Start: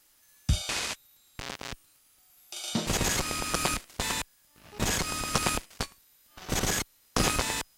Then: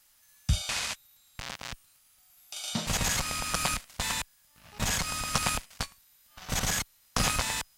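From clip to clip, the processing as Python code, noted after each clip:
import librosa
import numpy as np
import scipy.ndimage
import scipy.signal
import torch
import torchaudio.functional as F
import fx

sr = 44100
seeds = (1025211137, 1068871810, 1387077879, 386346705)

y = fx.peak_eq(x, sr, hz=360.0, db=-13.0, octaves=0.8)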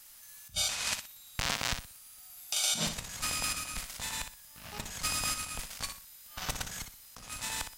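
y = fx.over_compress(x, sr, threshold_db=-36.0, ratio=-0.5)
y = fx.high_shelf(y, sr, hz=5600.0, db=4.5)
y = fx.echo_feedback(y, sr, ms=61, feedback_pct=26, wet_db=-8.5)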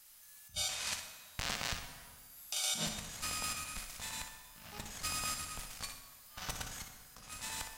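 y = fx.rev_plate(x, sr, seeds[0], rt60_s=1.7, hf_ratio=0.7, predelay_ms=0, drr_db=6.0)
y = y * librosa.db_to_amplitude(-6.0)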